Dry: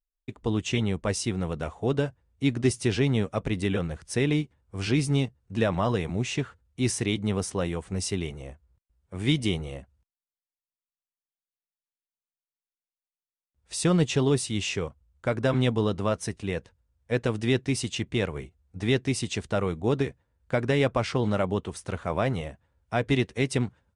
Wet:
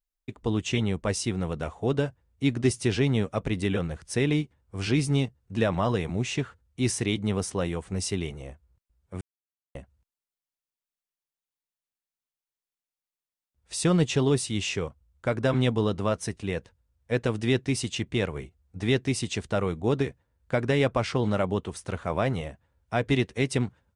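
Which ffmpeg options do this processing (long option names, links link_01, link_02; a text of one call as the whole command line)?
ffmpeg -i in.wav -filter_complex "[0:a]asplit=3[link_01][link_02][link_03];[link_01]atrim=end=9.21,asetpts=PTS-STARTPTS,afade=type=out:start_time=9.206:duration=0.004:curve=hsin[link_04];[link_02]atrim=start=9.21:end=9.75,asetpts=PTS-STARTPTS,volume=0[link_05];[link_03]atrim=start=9.75,asetpts=PTS-STARTPTS,afade=type=in:duration=0.004:curve=hsin[link_06];[link_04][link_05][link_06]concat=n=3:v=0:a=1" out.wav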